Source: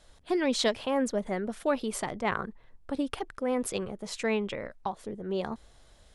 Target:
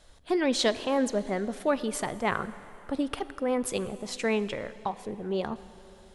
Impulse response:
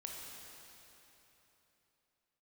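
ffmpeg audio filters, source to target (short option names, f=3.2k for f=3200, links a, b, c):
-filter_complex "[0:a]asplit=2[a][b];[1:a]atrim=start_sample=2205,asetrate=48510,aresample=44100[c];[b][c]afir=irnorm=-1:irlink=0,volume=-8dB[d];[a][d]amix=inputs=2:normalize=0"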